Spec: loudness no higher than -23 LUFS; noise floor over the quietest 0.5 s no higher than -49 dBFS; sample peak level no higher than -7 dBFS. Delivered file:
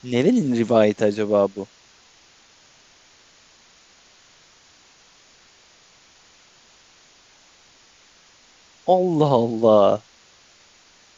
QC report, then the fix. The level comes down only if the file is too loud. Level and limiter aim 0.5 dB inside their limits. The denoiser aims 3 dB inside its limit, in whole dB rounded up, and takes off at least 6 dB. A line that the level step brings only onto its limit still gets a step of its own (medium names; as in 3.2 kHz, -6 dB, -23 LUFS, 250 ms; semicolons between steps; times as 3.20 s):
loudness -19.0 LUFS: fail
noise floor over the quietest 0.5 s -54 dBFS: pass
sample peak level -5.0 dBFS: fail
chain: trim -4.5 dB